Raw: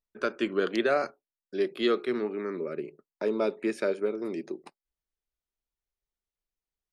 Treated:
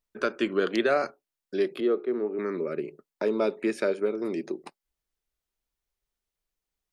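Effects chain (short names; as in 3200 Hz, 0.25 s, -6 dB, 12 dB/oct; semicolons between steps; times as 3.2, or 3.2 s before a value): in parallel at -2 dB: compressor, threshold -35 dBFS, peak gain reduction 14 dB; 1.8–2.39 on the sum: band-pass 440 Hz, Q 0.96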